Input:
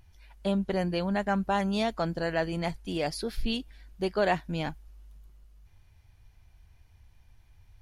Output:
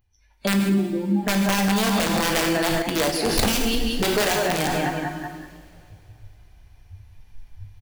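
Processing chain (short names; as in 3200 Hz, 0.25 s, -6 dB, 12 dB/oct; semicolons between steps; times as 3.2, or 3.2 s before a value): in parallel at +1 dB: compressor 12:1, threshold -41 dBFS, peak gain reduction 20.5 dB; 0.59–1.23 on the sum: vocal tract filter u; on a send: feedback echo 0.189 s, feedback 59%, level -7 dB; on the sum: spectral noise reduction 19 dB; AGC gain up to 16.5 dB; wrapped overs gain 7.5 dB; two-slope reverb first 0.79 s, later 3 s, from -19 dB, DRR 3.5 dB; 2.82–3.29 gate -13 dBFS, range -8 dB; limiter -13 dBFS, peak gain reduction 11 dB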